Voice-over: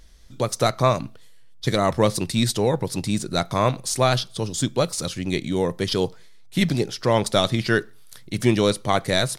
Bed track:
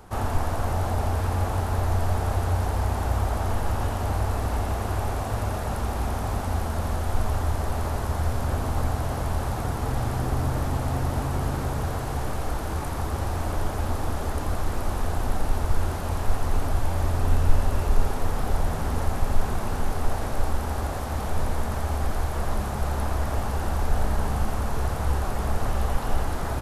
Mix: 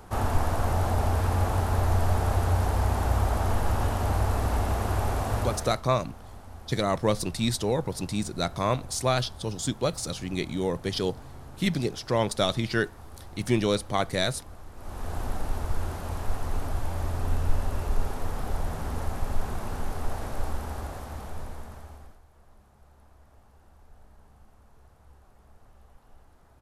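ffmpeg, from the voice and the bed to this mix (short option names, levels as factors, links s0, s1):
-filter_complex "[0:a]adelay=5050,volume=0.531[s0];[1:a]volume=4.47,afade=t=out:st=5.37:d=0.45:silence=0.11885,afade=t=in:st=14.75:d=0.43:silence=0.223872,afade=t=out:st=20.5:d=1.7:silence=0.0562341[s1];[s0][s1]amix=inputs=2:normalize=0"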